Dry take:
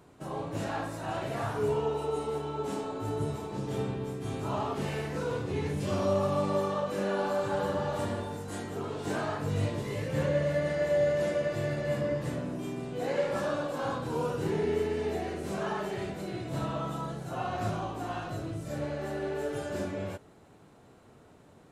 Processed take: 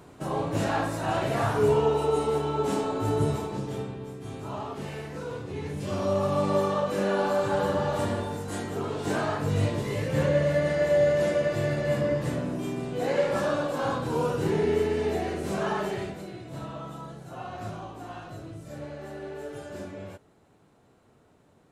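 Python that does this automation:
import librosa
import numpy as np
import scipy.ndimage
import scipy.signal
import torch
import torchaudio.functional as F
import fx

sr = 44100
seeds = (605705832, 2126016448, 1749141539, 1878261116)

y = fx.gain(x, sr, db=fx.line((3.37, 7.0), (3.89, -3.0), (5.54, -3.0), (6.56, 4.5), (15.89, 4.5), (16.37, -4.5)))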